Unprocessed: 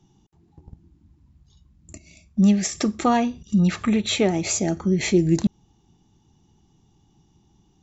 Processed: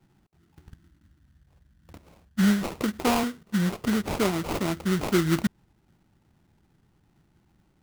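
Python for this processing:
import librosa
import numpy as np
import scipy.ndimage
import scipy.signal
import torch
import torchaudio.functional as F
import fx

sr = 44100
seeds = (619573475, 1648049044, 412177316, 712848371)

y = fx.cabinet(x, sr, low_hz=160.0, low_slope=12, high_hz=4400.0, hz=(460.0, 1300.0, 2300.0), db=(7, -7, 4), at=(3.23, 3.84))
y = fx.sample_hold(y, sr, seeds[0], rate_hz=1700.0, jitter_pct=20)
y = F.gain(torch.from_numpy(y), -4.5).numpy()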